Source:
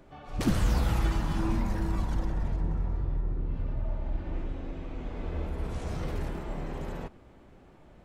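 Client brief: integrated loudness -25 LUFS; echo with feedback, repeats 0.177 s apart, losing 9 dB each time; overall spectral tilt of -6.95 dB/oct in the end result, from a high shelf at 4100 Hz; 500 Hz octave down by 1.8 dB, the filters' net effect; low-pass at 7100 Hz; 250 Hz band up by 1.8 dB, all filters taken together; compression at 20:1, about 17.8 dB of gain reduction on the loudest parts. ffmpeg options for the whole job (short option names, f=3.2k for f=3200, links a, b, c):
-af "lowpass=7.1k,equalizer=f=250:t=o:g=3.5,equalizer=f=500:t=o:g=-4,highshelf=f=4.1k:g=-3.5,acompressor=threshold=-38dB:ratio=20,aecho=1:1:177|354|531|708:0.355|0.124|0.0435|0.0152,volume=20dB"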